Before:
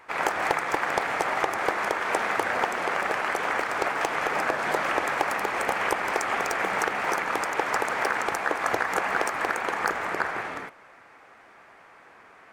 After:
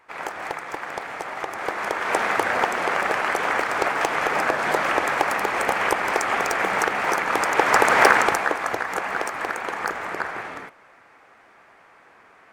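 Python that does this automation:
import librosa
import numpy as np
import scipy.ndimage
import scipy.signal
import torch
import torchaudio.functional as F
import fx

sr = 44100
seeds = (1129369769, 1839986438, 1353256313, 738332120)

y = fx.gain(x, sr, db=fx.line((1.34, -5.5), (2.19, 4.0), (7.23, 4.0), (8.06, 12.0), (8.7, -0.5)))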